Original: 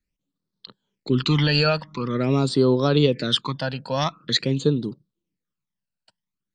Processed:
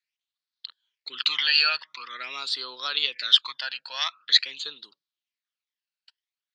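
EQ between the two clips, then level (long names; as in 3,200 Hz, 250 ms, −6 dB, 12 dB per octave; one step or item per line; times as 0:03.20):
flat-topped band-pass 2,500 Hz, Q 0.78
high-shelf EQ 2,100 Hz +11 dB
−3.0 dB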